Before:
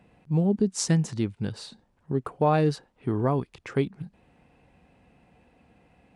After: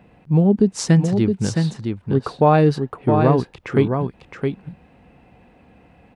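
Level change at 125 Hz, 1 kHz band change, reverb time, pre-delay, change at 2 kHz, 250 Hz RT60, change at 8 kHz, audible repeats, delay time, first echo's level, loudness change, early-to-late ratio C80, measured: +9.0 dB, +9.0 dB, no reverb audible, no reverb audible, +8.0 dB, no reverb audible, +2.0 dB, 1, 666 ms, −5.5 dB, +8.0 dB, no reverb audible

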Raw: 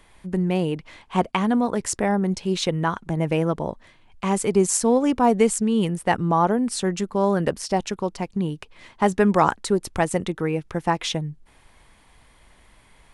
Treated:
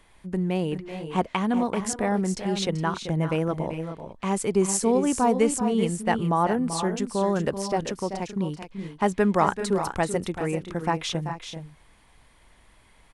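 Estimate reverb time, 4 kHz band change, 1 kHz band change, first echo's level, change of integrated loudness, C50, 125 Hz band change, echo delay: no reverb audible, −3.0 dB, −3.0 dB, −10.5 dB, −3.0 dB, no reverb audible, −2.5 dB, 385 ms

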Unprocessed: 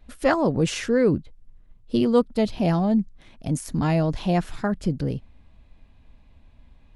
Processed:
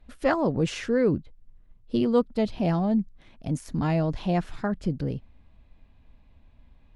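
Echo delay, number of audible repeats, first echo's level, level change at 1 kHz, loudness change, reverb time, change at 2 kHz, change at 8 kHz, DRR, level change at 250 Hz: no echo audible, no echo audible, no echo audible, −3.0 dB, −3.0 dB, no reverb audible, −3.5 dB, −8.5 dB, no reverb audible, −3.0 dB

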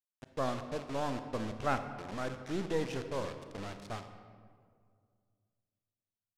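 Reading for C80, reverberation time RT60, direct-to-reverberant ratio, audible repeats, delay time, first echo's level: 10.0 dB, 2.1 s, 8.0 dB, no echo audible, no echo audible, no echo audible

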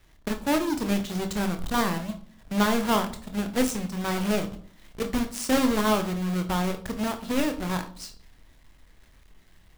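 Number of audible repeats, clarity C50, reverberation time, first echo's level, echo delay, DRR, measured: no echo audible, 12.5 dB, 0.50 s, no echo audible, no echo audible, 6.0 dB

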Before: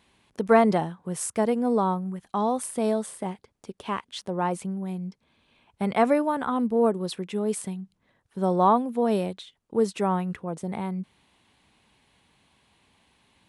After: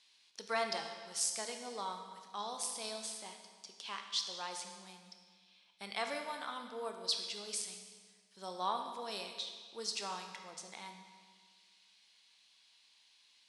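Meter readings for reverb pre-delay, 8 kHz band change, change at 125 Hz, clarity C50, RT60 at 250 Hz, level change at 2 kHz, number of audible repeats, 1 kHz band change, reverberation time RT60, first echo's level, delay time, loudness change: 15 ms, −2.0 dB, below −25 dB, 6.0 dB, 1.7 s, −8.0 dB, no echo audible, −14.5 dB, 1.7 s, no echo audible, no echo audible, −13.5 dB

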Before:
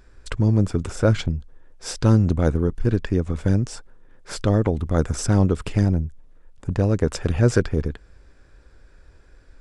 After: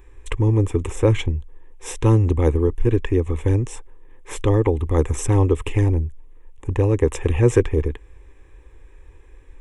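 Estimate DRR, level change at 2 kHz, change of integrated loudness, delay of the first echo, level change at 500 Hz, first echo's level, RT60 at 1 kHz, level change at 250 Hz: no reverb audible, −0.5 dB, +1.5 dB, no echo audible, +4.0 dB, no echo audible, no reverb audible, −1.0 dB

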